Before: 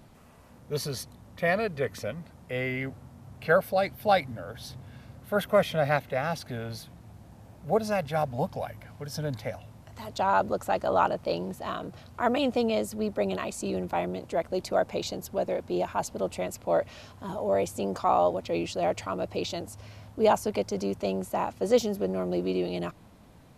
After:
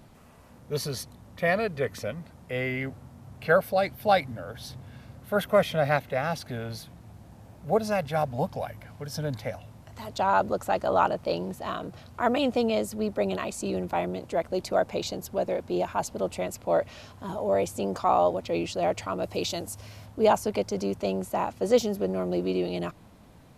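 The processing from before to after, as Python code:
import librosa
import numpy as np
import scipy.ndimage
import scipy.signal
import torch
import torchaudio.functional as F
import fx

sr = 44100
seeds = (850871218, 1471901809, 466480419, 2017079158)

y = fx.high_shelf(x, sr, hz=5900.0, db=9.5, at=(19.23, 20.06))
y = y * librosa.db_to_amplitude(1.0)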